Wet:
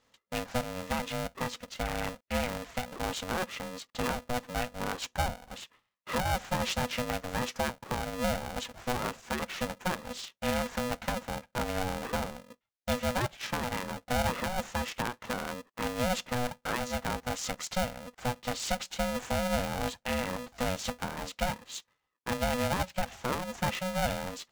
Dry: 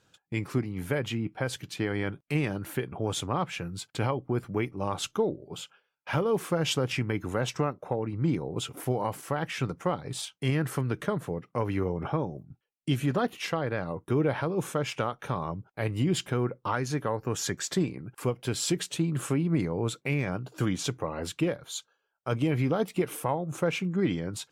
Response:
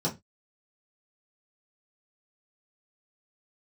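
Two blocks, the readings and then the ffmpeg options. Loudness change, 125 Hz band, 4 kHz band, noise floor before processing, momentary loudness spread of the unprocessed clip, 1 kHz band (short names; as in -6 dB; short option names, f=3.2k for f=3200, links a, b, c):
-3.0 dB, -8.5 dB, 0.0 dB, -77 dBFS, 6 LU, +1.5 dB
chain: -af "aresample=16000,aresample=44100,aeval=exprs='val(0)*sgn(sin(2*PI*370*n/s))':c=same,volume=-3.5dB"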